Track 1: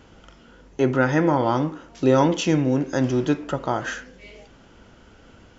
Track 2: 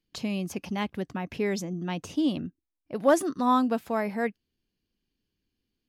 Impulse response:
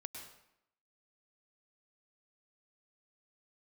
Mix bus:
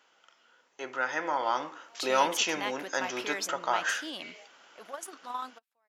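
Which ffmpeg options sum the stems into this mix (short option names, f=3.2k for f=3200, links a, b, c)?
-filter_complex "[0:a]volume=-8.5dB,asplit=2[a][b];[1:a]alimiter=limit=-23dB:level=0:latency=1:release=56,adelay=1850,volume=-4dB[c];[b]apad=whole_len=341240[d];[c][d]sidechaingate=range=-42dB:threshold=-56dB:ratio=16:detection=peak[e];[a][e]amix=inputs=2:normalize=0,highpass=880,dynaudnorm=f=240:g=11:m=9dB"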